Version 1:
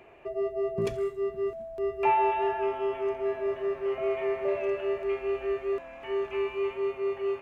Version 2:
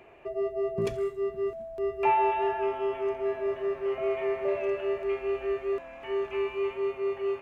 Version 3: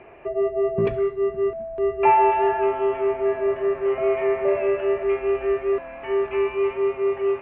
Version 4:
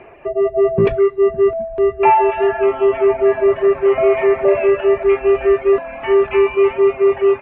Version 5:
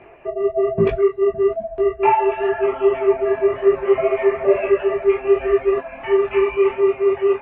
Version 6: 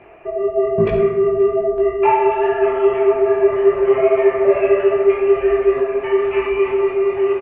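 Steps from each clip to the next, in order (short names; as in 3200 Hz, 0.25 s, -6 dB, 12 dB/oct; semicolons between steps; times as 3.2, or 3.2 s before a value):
nothing audible
LPF 2600 Hz 24 dB/oct; gain +7.5 dB
reverb removal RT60 0.92 s; in parallel at -1 dB: limiter -18 dBFS, peak gain reduction 11 dB; on the sum: AGC gain up to 6 dB
detuned doubles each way 37 cents
outdoor echo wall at 90 m, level -20 dB; on a send at -2.5 dB: reverb RT60 1.5 s, pre-delay 10 ms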